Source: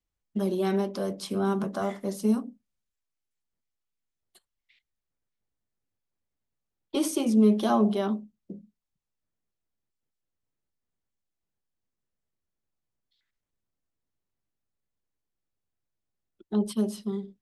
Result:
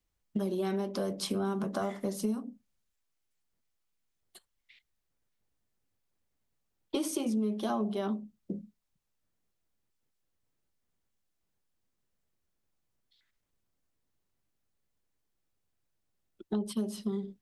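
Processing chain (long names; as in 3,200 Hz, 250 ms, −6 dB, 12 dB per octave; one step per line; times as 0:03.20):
downward compressor 6 to 1, threshold −34 dBFS, peak gain reduction 17 dB
level +4.5 dB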